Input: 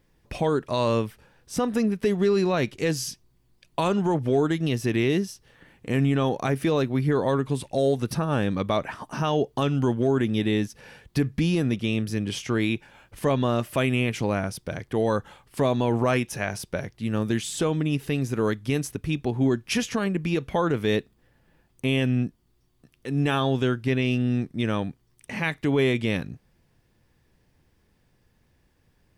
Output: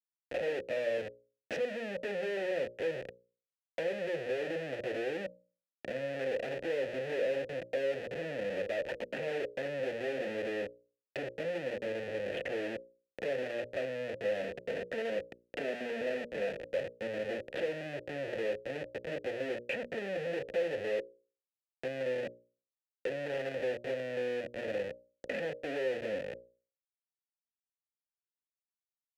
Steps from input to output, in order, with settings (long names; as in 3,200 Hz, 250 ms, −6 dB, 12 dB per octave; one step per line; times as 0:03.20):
each half-wave held at its own peak
treble cut that deepens with the level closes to 970 Hz, closed at −18.5 dBFS
0:14.42–0:16.61: comb filter 4.4 ms, depth 90%
comparator with hysteresis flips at −33 dBFS
formant filter e
mains-hum notches 60/120/180/240/300/360/420/480/540/600 Hz
multiband upward and downward compressor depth 40%